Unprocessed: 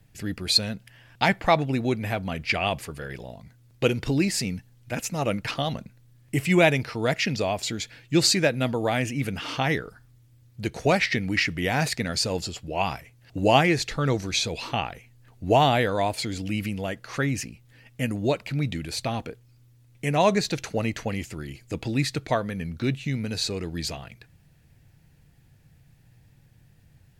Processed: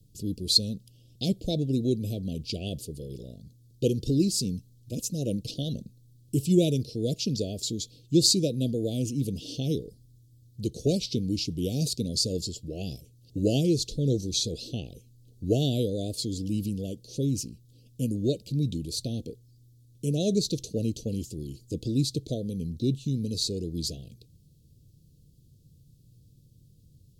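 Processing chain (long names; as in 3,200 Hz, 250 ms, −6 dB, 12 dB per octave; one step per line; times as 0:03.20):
harmonic generator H 7 −42 dB, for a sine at −4.5 dBFS
inverse Chebyshev band-stop filter 950–1,900 Hz, stop band 60 dB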